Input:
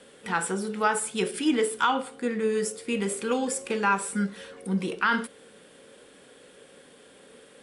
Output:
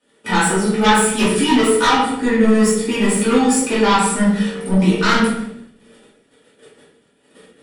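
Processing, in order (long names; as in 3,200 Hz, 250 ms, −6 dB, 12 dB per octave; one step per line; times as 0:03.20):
noise gate −49 dBFS, range −25 dB
notch comb filter 530 Hz
sine wavefolder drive 11 dB, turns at −11 dBFS
rectangular room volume 160 cubic metres, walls mixed, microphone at 2.6 metres
level −8.5 dB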